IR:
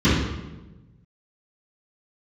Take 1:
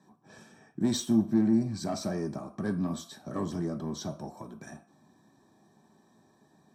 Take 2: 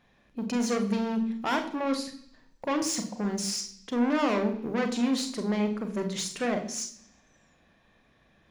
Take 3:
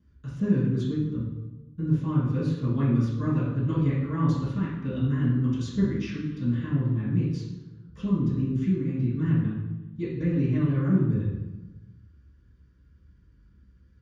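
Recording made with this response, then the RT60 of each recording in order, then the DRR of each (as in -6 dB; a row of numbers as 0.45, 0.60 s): 3; 0.45, 0.70, 1.1 s; 3.0, 6.0, -15.5 dB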